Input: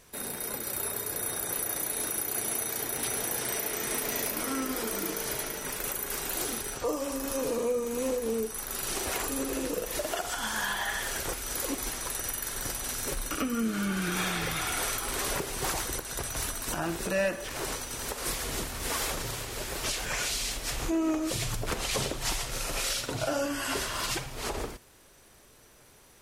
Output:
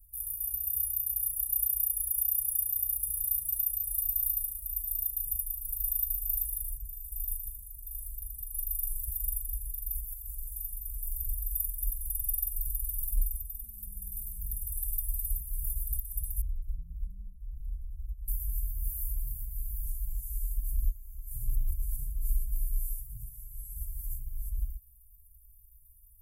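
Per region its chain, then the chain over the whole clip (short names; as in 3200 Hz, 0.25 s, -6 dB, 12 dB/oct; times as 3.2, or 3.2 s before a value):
16.41–18.28 air absorption 290 m + small resonant body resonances 240/940/3200 Hz, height 16 dB, ringing for 70 ms
whole clip: inverse Chebyshev band-stop 270–4200 Hz, stop band 70 dB; bell 100 Hz +15 dB 0.98 oct; comb 5.3 ms, depth 88%; gain +4 dB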